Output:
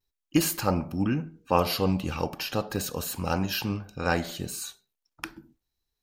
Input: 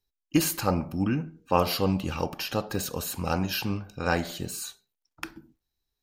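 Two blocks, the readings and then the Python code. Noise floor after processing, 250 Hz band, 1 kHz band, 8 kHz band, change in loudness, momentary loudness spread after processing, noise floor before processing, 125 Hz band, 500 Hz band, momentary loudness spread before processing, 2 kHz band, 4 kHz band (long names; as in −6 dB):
−85 dBFS, 0.0 dB, 0.0 dB, 0.0 dB, 0.0 dB, 11 LU, −85 dBFS, 0.0 dB, 0.0 dB, 11 LU, 0.0 dB, 0.0 dB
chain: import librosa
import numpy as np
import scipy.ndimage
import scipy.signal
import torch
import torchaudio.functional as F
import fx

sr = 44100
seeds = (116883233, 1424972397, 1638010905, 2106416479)

y = fx.vibrato(x, sr, rate_hz=0.37, depth_cents=22.0)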